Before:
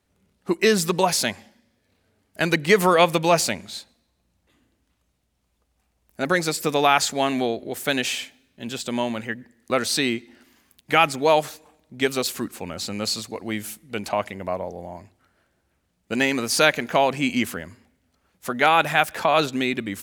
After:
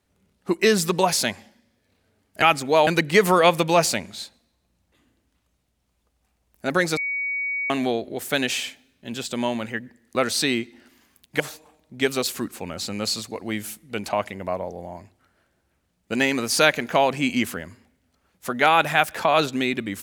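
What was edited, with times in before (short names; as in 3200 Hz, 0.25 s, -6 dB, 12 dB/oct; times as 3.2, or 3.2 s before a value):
6.52–7.25 bleep 2250 Hz -23.5 dBFS
10.95–11.4 move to 2.42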